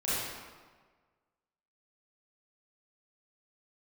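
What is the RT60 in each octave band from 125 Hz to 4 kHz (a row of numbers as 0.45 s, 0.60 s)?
1.5 s, 1.4 s, 1.5 s, 1.5 s, 1.3 s, 1.0 s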